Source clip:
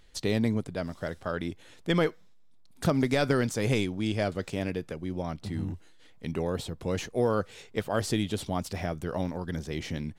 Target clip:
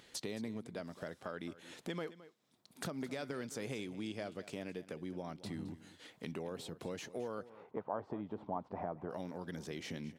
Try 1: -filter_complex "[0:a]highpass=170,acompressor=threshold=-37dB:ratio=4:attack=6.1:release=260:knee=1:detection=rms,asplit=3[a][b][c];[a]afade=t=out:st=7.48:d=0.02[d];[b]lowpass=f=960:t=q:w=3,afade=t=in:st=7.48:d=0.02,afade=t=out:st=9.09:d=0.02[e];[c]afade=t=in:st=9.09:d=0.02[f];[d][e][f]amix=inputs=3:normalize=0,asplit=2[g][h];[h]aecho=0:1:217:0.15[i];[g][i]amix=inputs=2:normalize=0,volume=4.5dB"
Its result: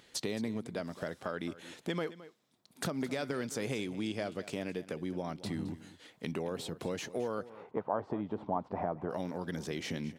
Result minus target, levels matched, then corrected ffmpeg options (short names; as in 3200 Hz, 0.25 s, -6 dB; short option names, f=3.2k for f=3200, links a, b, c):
compressor: peak gain reduction -6 dB
-filter_complex "[0:a]highpass=170,acompressor=threshold=-45dB:ratio=4:attack=6.1:release=260:knee=1:detection=rms,asplit=3[a][b][c];[a]afade=t=out:st=7.48:d=0.02[d];[b]lowpass=f=960:t=q:w=3,afade=t=in:st=7.48:d=0.02,afade=t=out:st=9.09:d=0.02[e];[c]afade=t=in:st=9.09:d=0.02[f];[d][e][f]amix=inputs=3:normalize=0,asplit=2[g][h];[h]aecho=0:1:217:0.15[i];[g][i]amix=inputs=2:normalize=0,volume=4.5dB"